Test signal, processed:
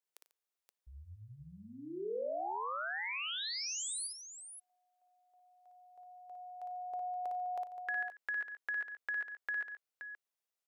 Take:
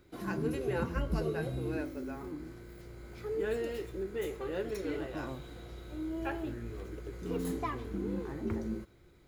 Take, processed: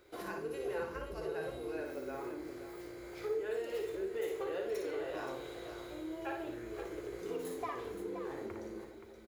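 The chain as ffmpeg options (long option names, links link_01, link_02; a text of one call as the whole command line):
ffmpeg -i in.wav -af "acompressor=threshold=-38dB:ratio=6,lowshelf=frequency=310:width_type=q:width=1.5:gain=-11,aecho=1:1:57|94|143|524:0.596|0.158|0.133|0.335,volume=1.5dB" out.wav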